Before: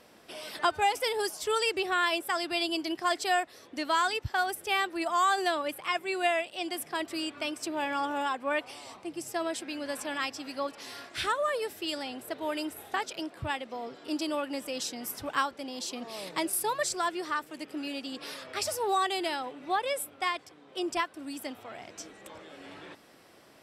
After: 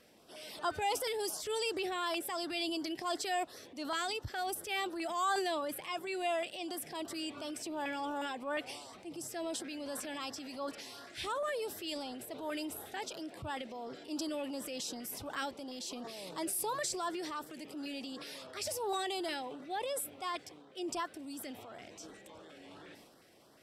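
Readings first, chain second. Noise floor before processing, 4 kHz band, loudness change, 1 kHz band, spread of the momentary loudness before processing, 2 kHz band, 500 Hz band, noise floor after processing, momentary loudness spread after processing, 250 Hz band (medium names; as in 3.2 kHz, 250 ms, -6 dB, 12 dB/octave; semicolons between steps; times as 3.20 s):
-56 dBFS, -6.0 dB, -6.5 dB, -8.0 dB, 13 LU, -9.5 dB, -5.5 dB, -57 dBFS, 11 LU, -5.0 dB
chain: LFO notch saw up 2.8 Hz 830–2800 Hz; transient shaper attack -4 dB, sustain +7 dB; trim -5 dB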